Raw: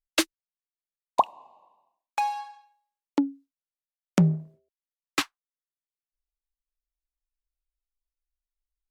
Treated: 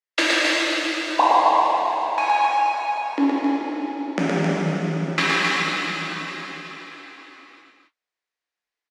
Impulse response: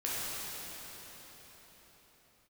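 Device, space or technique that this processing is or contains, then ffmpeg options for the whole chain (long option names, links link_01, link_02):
station announcement: -filter_complex "[0:a]highpass=320,lowpass=5000,equalizer=frequency=1900:width_type=o:width=0.42:gain=7,aecho=1:1:116.6|265.3:0.708|0.562[link_01];[1:a]atrim=start_sample=2205[link_02];[link_01][link_02]afir=irnorm=-1:irlink=0,volume=3dB"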